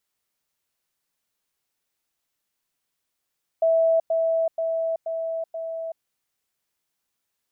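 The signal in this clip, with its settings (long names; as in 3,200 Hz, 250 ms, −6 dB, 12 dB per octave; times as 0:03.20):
level staircase 655 Hz −16 dBFS, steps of −3 dB, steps 5, 0.38 s 0.10 s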